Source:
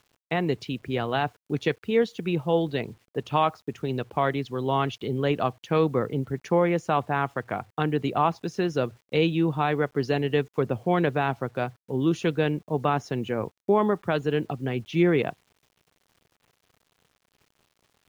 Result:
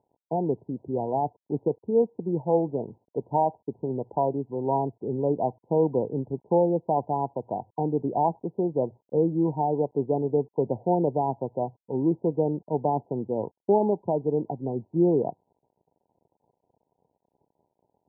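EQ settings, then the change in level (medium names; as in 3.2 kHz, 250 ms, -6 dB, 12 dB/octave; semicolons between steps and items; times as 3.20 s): high-pass 210 Hz 6 dB/octave; brick-wall FIR low-pass 1 kHz; +1.5 dB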